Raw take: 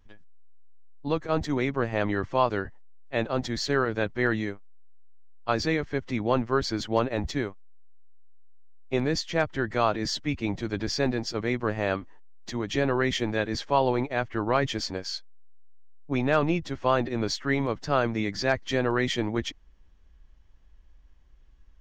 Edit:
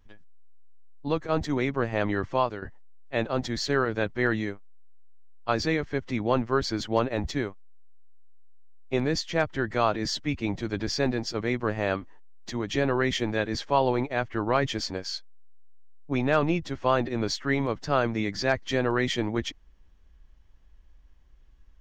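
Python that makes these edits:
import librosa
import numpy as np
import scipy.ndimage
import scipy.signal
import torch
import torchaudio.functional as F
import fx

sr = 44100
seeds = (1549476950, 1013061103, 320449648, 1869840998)

y = fx.edit(x, sr, fx.fade_out_to(start_s=2.35, length_s=0.27, floor_db=-12.5), tone=tone)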